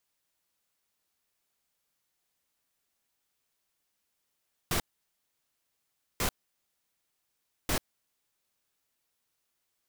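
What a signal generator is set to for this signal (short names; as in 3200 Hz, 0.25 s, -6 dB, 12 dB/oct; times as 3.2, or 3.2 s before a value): noise bursts pink, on 0.09 s, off 1.40 s, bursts 3, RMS -28.5 dBFS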